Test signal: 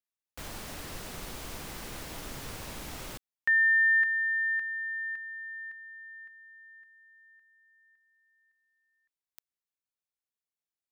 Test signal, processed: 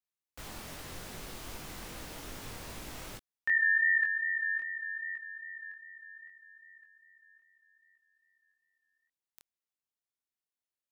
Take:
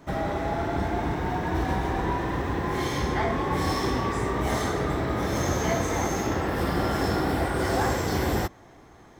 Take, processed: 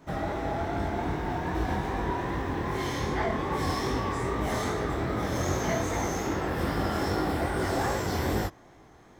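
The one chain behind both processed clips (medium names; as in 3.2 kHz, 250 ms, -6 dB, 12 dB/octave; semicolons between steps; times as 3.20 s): chorus 2.5 Hz, delay 18.5 ms, depth 6.9 ms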